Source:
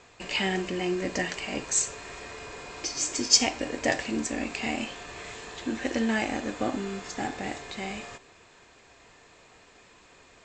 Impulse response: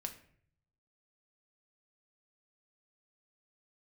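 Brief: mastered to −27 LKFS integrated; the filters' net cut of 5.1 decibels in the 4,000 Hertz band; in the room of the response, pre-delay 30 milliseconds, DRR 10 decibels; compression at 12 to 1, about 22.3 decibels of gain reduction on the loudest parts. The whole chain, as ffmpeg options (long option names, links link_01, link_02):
-filter_complex "[0:a]equalizer=frequency=4000:width_type=o:gain=-7.5,acompressor=threshold=-40dB:ratio=12,asplit=2[link_01][link_02];[1:a]atrim=start_sample=2205,adelay=30[link_03];[link_02][link_03]afir=irnorm=-1:irlink=0,volume=-8dB[link_04];[link_01][link_04]amix=inputs=2:normalize=0,volume=16.5dB"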